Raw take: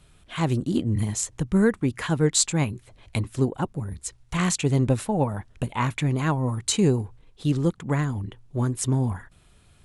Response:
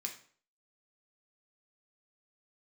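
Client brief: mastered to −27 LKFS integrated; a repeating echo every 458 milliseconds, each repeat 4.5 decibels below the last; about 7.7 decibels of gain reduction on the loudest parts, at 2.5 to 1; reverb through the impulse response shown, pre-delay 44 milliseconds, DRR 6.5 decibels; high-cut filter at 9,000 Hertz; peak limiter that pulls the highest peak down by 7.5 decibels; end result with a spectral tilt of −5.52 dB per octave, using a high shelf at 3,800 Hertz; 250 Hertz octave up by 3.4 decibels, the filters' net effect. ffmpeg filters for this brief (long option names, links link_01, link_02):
-filter_complex "[0:a]lowpass=9000,equalizer=frequency=250:width_type=o:gain=4.5,highshelf=frequency=3800:gain=-3,acompressor=threshold=-25dB:ratio=2.5,alimiter=limit=-20.5dB:level=0:latency=1,aecho=1:1:458|916|1374|1832|2290|2748|3206|3664|4122:0.596|0.357|0.214|0.129|0.0772|0.0463|0.0278|0.0167|0.01,asplit=2[link_01][link_02];[1:a]atrim=start_sample=2205,adelay=44[link_03];[link_02][link_03]afir=irnorm=-1:irlink=0,volume=-5.5dB[link_04];[link_01][link_04]amix=inputs=2:normalize=0,volume=2dB"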